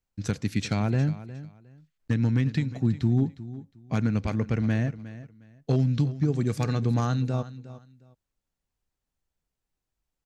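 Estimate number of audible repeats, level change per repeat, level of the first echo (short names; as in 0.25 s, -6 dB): 2, -13.0 dB, -15.5 dB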